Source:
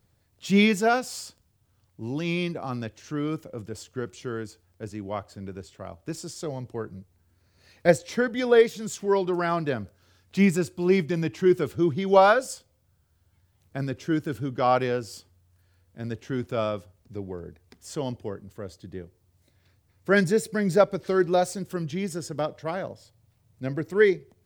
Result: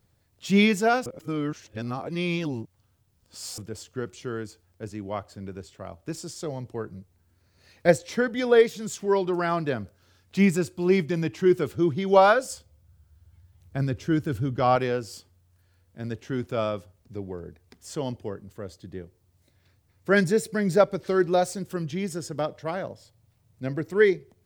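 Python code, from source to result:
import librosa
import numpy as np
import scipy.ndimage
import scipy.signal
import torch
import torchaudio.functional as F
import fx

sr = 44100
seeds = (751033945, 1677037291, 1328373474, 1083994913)

y = fx.peak_eq(x, sr, hz=71.0, db=12.5, octaves=1.5, at=(12.51, 14.76))
y = fx.edit(y, sr, fx.reverse_span(start_s=1.06, length_s=2.52), tone=tone)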